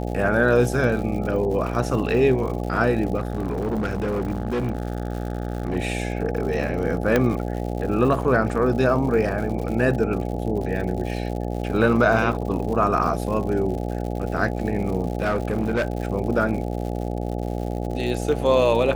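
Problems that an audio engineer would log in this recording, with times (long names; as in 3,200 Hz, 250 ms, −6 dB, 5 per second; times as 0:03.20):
mains buzz 60 Hz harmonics 14 −27 dBFS
surface crackle 130 per second −31 dBFS
0:03.17–0:05.77: clipping −20.5 dBFS
0:07.16: click −6 dBFS
0:15.20–0:15.97: clipping −17.5 dBFS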